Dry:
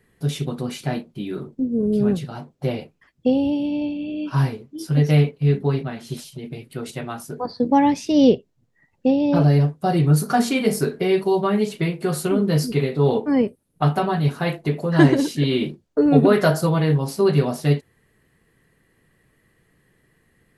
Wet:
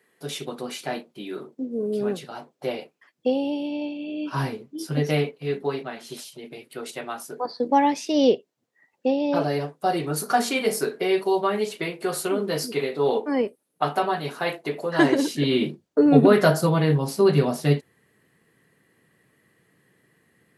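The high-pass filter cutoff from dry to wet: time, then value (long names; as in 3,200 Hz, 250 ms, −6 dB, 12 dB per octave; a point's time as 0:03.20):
0:03.96 380 Hz
0:04.67 170 Hz
0:05.48 380 Hz
0:15.00 380 Hz
0:15.62 140 Hz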